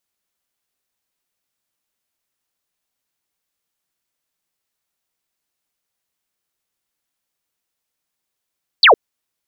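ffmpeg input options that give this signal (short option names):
-f lavfi -i "aevalsrc='0.562*clip(t/0.002,0,1)*clip((0.11-t)/0.002,0,1)*sin(2*PI*4900*0.11/log(370/4900)*(exp(log(370/4900)*t/0.11)-1))':d=0.11:s=44100"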